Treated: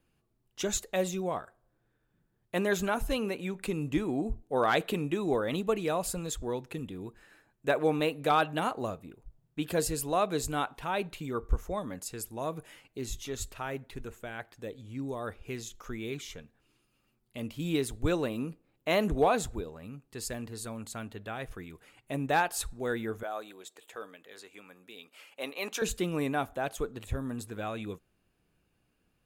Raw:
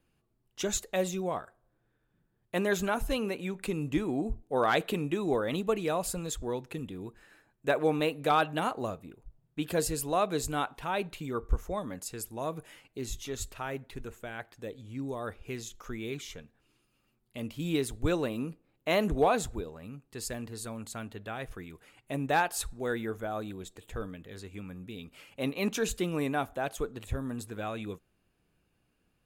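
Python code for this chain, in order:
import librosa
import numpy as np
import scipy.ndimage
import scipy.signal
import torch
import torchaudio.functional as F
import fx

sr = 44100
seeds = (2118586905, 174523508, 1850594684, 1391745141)

y = fx.highpass(x, sr, hz=520.0, slope=12, at=(23.23, 25.82))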